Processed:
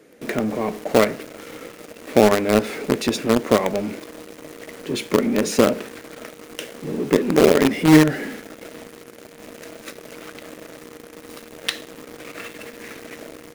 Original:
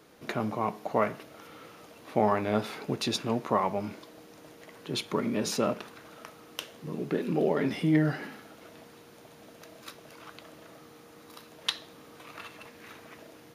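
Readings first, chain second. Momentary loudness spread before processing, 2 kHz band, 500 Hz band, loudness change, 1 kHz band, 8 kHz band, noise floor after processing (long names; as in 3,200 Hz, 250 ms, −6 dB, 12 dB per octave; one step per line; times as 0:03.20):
22 LU, +11.5 dB, +11.5 dB, +11.0 dB, +5.5 dB, +11.0 dB, −44 dBFS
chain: graphic EQ with 10 bands 250 Hz +8 dB, 500 Hz +10 dB, 1,000 Hz −6 dB, 2,000 Hz +9 dB, 4,000 Hz −3 dB, 8,000 Hz +7 dB
in parallel at −8 dB: log-companded quantiser 2 bits
on the sum: level −1.5 dB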